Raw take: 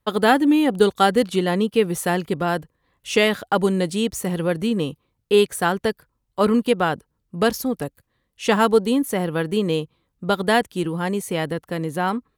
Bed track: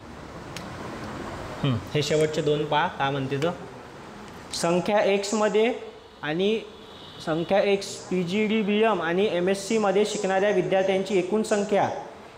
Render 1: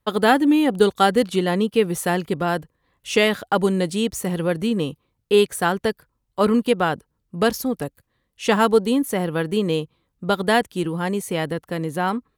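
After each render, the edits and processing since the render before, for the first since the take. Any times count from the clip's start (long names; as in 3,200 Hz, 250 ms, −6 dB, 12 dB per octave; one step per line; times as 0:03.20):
no processing that can be heard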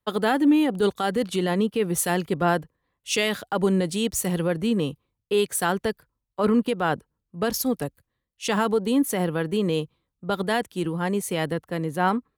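brickwall limiter −13.5 dBFS, peak gain reduction 10.5 dB
multiband upward and downward expander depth 70%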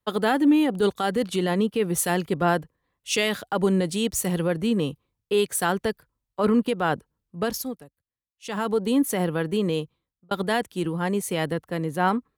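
0:07.39–0:08.81: duck −19 dB, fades 0.45 s linear
0:09.47–0:10.31: fade out equal-power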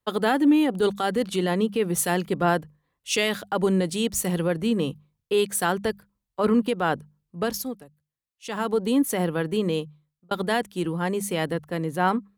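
mains-hum notches 50/100/150/200 Hz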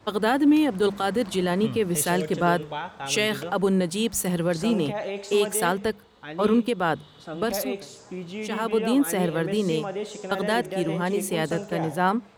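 mix in bed track −9.5 dB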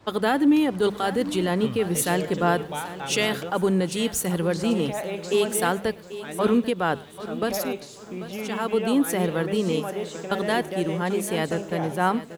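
single-tap delay 107 ms −23 dB
feedback echo at a low word length 789 ms, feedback 35%, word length 8 bits, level −14 dB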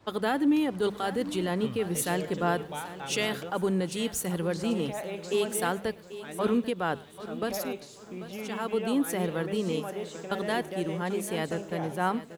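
level −5.5 dB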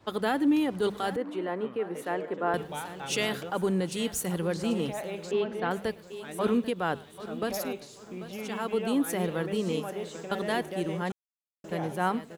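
0:01.16–0:02.54: three-way crossover with the lows and the highs turned down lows −22 dB, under 250 Hz, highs −19 dB, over 2,200 Hz
0:05.31–0:05.71: high-frequency loss of the air 310 metres
0:11.12–0:11.64: silence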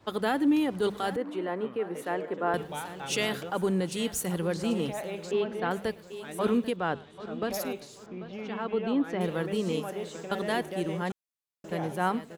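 0:06.76–0:07.51: high-frequency loss of the air 91 metres
0:08.06–0:09.21: high-frequency loss of the air 220 metres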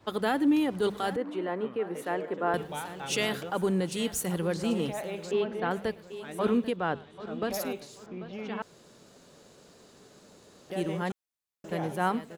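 0:01.13–0:01.87: high-shelf EQ 11,000 Hz −8 dB
0:05.45–0:07.27: high-shelf EQ 5,800 Hz −6 dB
0:08.62–0:10.70: fill with room tone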